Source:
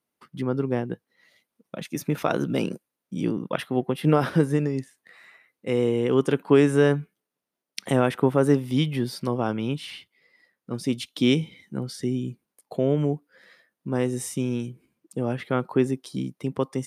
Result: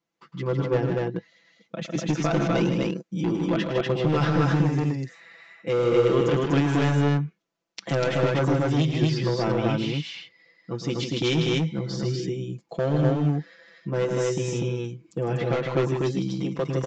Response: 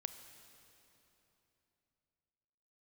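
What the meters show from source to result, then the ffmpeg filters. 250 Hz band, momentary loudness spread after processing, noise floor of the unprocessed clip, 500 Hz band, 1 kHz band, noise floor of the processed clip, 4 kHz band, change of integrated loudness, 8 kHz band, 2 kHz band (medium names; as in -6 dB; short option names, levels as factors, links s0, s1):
-0.5 dB, 11 LU, -85 dBFS, 0.0 dB, +1.5 dB, -69 dBFS, +2.5 dB, +0.5 dB, -0.5 dB, +2.0 dB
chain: -af "aecho=1:1:6:0.99,alimiter=limit=0.316:level=0:latency=1:release=27,volume=7.08,asoftclip=hard,volume=0.141,aresample=16000,aresample=44100,aecho=1:1:107.9|154.5|244.9:0.282|0.501|0.891,volume=0.794"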